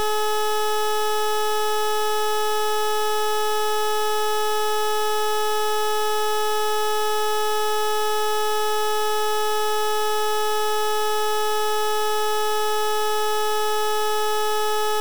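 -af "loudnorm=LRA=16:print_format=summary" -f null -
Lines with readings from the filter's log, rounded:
Input Integrated:    -22.6 LUFS
Input True Peak:     -18.7 dBTP
Input LRA:             0.0 LU
Input Threshold:     -32.6 LUFS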